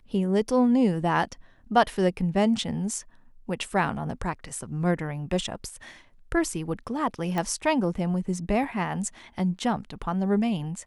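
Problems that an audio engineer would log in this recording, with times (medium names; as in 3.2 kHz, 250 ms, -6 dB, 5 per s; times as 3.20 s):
7.38 s: pop -16 dBFS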